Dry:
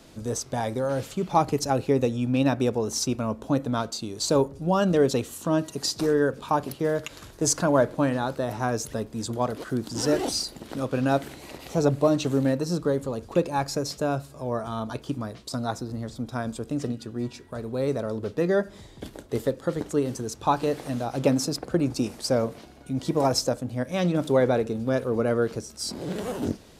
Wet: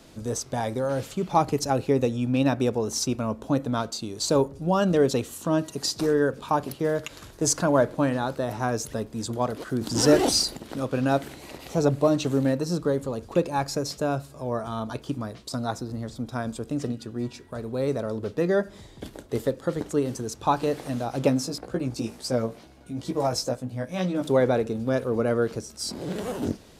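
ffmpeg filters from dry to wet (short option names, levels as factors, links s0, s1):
-filter_complex "[0:a]asettb=1/sr,asplit=3[s0][s1][s2];[s0]atrim=end=9.814[s3];[s1]atrim=start=9.81:end=10.57,asetpts=PTS-STARTPTS,afade=t=in:d=0.004:c=qsin,afade=t=out:st=0.756:d=0.004:c=qsin,acontrast=43[s4];[s2]atrim=start=10.566[s5];[s3][s4]acrossfade=d=0.004:c1=hsin:c2=qsin[s6];[s6][s5]acrossfade=d=0.004:c1=qsin:c2=hsin,asplit=3[s7][s8][s9];[s7]afade=t=out:st=21.29:d=0.02[s10];[s8]flanger=delay=15.5:depth=2.3:speed=2.2,afade=t=in:st=21.29:d=0.02,afade=t=out:st=24.22:d=0.02[s11];[s9]afade=t=in:st=24.22:d=0.02[s12];[s10][s11][s12]amix=inputs=3:normalize=0"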